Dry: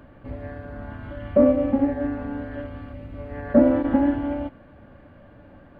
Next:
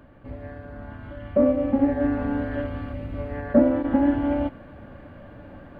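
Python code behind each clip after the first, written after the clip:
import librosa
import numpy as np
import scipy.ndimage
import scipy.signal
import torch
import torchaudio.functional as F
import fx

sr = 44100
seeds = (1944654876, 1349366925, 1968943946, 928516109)

y = fx.rider(x, sr, range_db=5, speed_s=0.5)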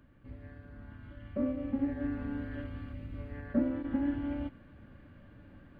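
y = fx.peak_eq(x, sr, hz=690.0, db=-11.0, octaves=1.4)
y = F.gain(torch.from_numpy(y), -8.5).numpy()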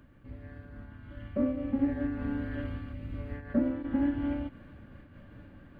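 y = fx.am_noise(x, sr, seeds[0], hz=5.7, depth_pct=60)
y = F.gain(torch.from_numpy(y), 5.5).numpy()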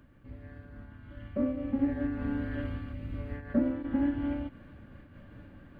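y = fx.rider(x, sr, range_db=3, speed_s=2.0)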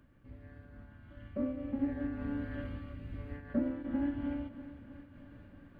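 y = fx.echo_feedback(x, sr, ms=317, feedback_pct=60, wet_db=-15.0)
y = F.gain(torch.from_numpy(y), -5.0).numpy()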